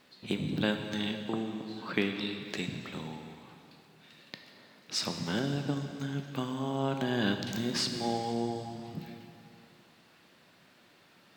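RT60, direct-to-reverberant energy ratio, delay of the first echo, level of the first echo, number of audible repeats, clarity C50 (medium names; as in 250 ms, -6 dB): 2.6 s, 5.0 dB, no echo, no echo, no echo, 6.5 dB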